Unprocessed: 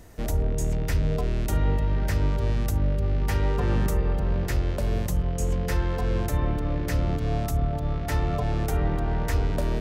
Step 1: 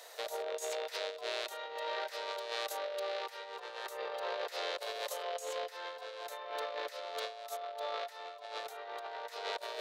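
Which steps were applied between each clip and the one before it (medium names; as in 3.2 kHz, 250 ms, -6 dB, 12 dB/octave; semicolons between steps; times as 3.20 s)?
steep high-pass 480 Hz 48 dB/octave; peaking EQ 3.9 kHz +10.5 dB 0.52 oct; compressor with a negative ratio -39 dBFS, ratio -0.5; trim -1 dB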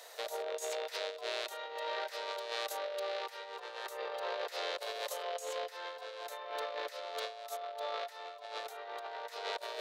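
peaking EQ 160 Hz -6 dB 0.62 oct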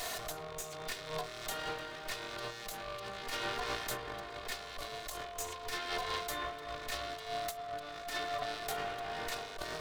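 comb filter that takes the minimum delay 2.8 ms; compressor with a negative ratio -50 dBFS, ratio -1; trim +8.5 dB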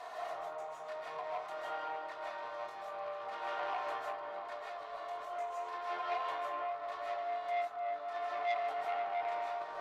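band-pass filter 890 Hz, Q 2.2; reverberation RT60 0.40 s, pre-delay 113 ms, DRR -4 dB; transformer saturation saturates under 1.5 kHz; trim +1 dB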